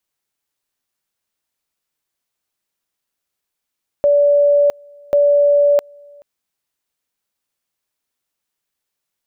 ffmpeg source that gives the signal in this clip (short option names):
-f lavfi -i "aevalsrc='pow(10,(-9-30*gte(mod(t,1.09),0.66))/20)*sin(2*PI*577*t)':d=2.18:s=44100"